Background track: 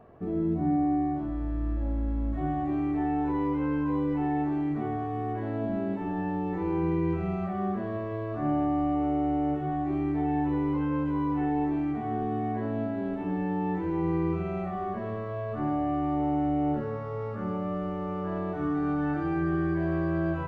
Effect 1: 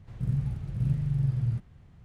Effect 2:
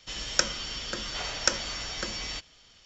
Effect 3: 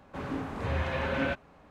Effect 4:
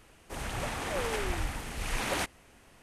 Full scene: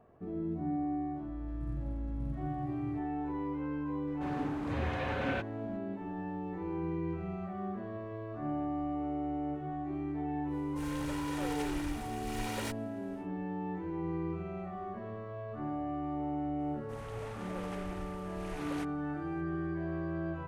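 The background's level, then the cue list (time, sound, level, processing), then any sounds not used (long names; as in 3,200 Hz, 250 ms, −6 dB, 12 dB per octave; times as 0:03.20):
background track −8.5 dB
0:01.40: mix in 1 −15.5 dB
0:04.07: mix in 3 −4.5 dB
0:10.46: mix in 4 −6.5 dB, fades 0.10 s + lower of the sound and its delayed copy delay 2.1 ms
0:16.59: mix in 4 −11 dB + high-shelf EQ 3,000 Hz −7.5 dB
not used: 2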